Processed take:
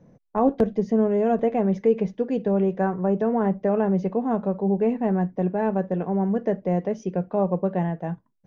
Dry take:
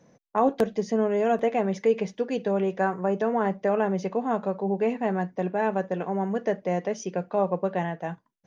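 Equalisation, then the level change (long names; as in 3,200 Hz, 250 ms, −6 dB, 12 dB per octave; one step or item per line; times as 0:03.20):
spectral tilt −3.5 dB per octave
−2.0 dB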